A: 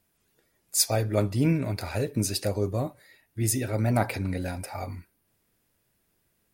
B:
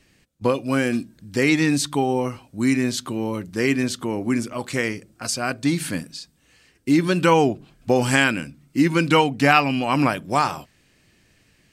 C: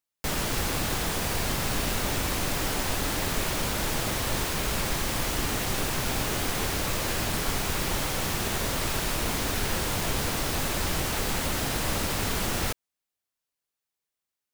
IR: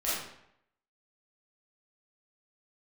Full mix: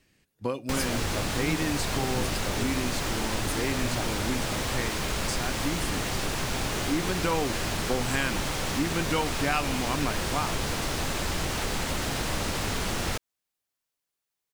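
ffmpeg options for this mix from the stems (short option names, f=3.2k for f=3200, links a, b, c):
-filter_complex "[0:a]volume=-8.5dB[a];[1:a]volume=-7.5dB[b];[2:a]acrossover=split=9500[c][d];[d]acompressor=threshold=-44dB:ratio=4:attack=1:release=60[e];[c][e]amix=inputs=2:normalize=0,adelay=450,volume=1.5dB[f];[a][b][f]amix=inputs=3:normalize=0,acompressor=threshold=-29dB:ratio=1.5"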